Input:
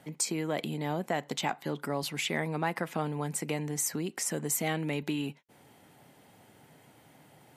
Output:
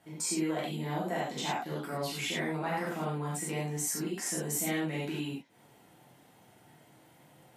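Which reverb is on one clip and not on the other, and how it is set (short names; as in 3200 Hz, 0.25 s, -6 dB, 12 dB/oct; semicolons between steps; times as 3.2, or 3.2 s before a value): non-linear reverb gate 0.13 s flat, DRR -7.5 dB; gain -9.5 dB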